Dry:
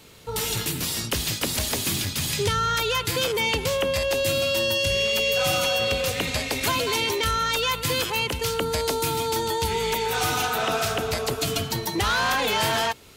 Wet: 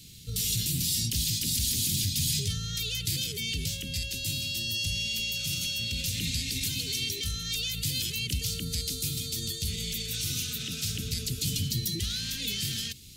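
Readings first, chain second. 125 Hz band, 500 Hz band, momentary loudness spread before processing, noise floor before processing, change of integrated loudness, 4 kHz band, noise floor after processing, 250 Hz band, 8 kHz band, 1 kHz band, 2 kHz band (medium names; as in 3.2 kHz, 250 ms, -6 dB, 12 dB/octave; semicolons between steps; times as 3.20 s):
-1.0 dB, -24.0 dB, 4 LU, -34 dBFS, -5.5 dB, -4.0 dB, -37 dBFS, -6.0 dB, -1.0 dB, under -30 dB, -12.5 dB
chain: peak limiter -20.5 dBFS, peak gain reduction 10 dB; Chebyshev band-stop 170–4100 Hz, order 2; trim +3.5 dB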